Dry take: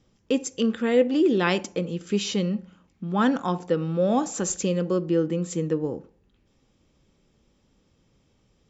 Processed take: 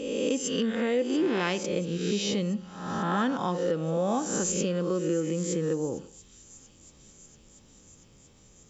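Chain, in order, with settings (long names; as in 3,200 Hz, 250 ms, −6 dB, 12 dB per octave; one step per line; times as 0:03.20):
peak hold with a rise ahead of every peak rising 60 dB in 0.82 s
downward compressor 2.5 to 1, threshold −34 dBFS, peak gain reduction 13.5 dB
on a send: delay with a high-pass on its return 685 ms, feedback 75%, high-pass 4,500 Hz, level −15 dB
on the sum: level +4.5 dB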